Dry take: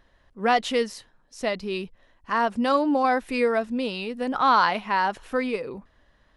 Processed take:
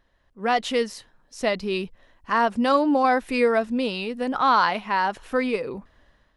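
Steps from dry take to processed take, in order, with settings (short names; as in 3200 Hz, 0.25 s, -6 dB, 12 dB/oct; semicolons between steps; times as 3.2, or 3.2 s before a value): AGC gain up to 9 dB; gain -5.5 dB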